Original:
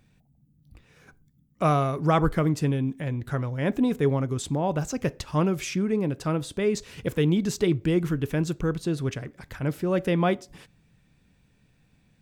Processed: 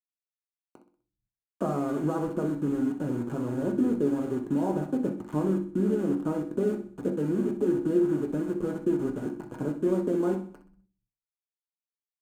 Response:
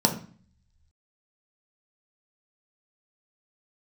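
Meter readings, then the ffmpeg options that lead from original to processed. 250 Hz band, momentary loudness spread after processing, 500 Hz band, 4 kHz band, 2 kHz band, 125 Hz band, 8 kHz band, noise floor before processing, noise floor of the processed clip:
0.0 dB, 6 LU, -1.5 dB, under -15 dB, -11.0 dB, -9.0 dB, under -10 dB, -64 dBFS, under -85 dBFS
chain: -filter_complex "[0:a]lowpass=f=1.1k:w=0.5412,lowpass=f=1.1k:w=1.3066,acompressor=threshold=-32dB:ratio=6,tremolo=f=150:d=0.519,aeval=exprs='val(0)*gte(abs(val(0)),0.00708)':c=same,aecho=1:1:63|126|189|252:0.251|0.108|0.0464|0.02[a];[1:a]atrim=start_sample=2205,asetrate=70560,aresample=44100[b];[a][b]afir=irnorm=-1:irlink=0,volume=-6.5dB"

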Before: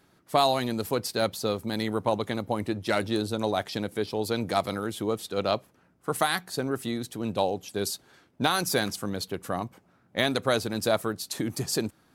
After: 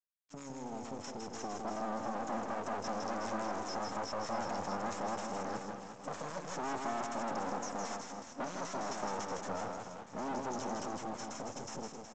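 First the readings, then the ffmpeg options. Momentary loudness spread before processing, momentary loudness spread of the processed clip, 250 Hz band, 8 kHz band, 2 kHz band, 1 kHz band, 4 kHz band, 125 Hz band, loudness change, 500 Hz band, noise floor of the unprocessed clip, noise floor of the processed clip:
7 LU, 7 LU, -11.0 dB, -9.5 dB, -12.0 dB, -6.5 dB, -17.0 dB, -15.5 dB, -11.0 dB, -12.0 dB, -64 dBFS, -51 dBFS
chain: -filter_complex "[0:a]afftfilt=real='re*(1-between(b*sr/4096,290,5100))':imag='im*(1-between(b*sr/4096,290,5100))':win_size=4096:overlap=0.75,alimiter=level_in=6dB:limit=-24dB:level=0:latency=1:release=14,volume=-6dB,dynaudnorm=f=410:g=9:m=13dB,aeval=exprs='(tanh(63.1*val(0)+0.6)-tanh(0.6))/63.1':c=same,equalizer=f=910:t=o:w=2.1:g=11,aphaser=in_gain=1:out_gain=1:delay=4.5:decay=0.29:speed=0.19:type=triangular,acrossover=split=270|2000[a][b][c];[a]acompressor=threshold=-43dB:ratio=4[d];[b]acompressor=threshold=-35dB:ratio=4[e];[c]acompressor=threshold=-46dB:ratio=4[f];[d][e][f]amix=inputs=3:normalize=0,aecho=1:1:160|368|638.4|989.9|1447:0.631|0.398|0.251|0.158|0.1,aresample=16000,aeval=exprs='sgn(val(0))*max(abs(val(0))-0.002,0)':c=same,aresample=44100,lowshelf=f=280:g=-11,volume=2dB"

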